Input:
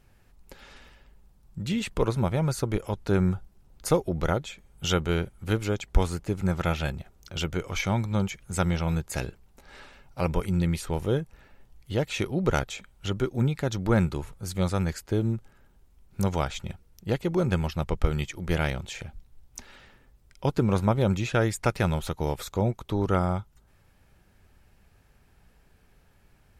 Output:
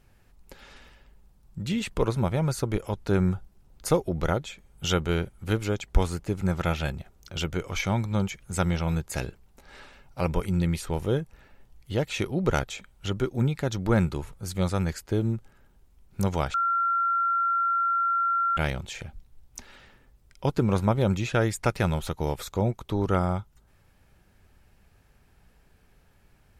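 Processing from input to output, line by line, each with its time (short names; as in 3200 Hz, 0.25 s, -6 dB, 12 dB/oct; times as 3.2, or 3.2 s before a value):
16.54–18.57 bleep 1370 Hz -21.5 dBFS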